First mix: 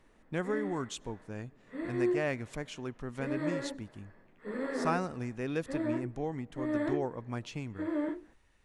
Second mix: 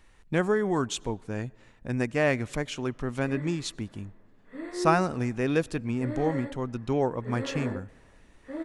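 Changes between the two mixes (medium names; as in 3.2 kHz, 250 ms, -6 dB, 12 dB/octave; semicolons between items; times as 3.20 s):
speech +8.5 dB; background: entry +2.80 s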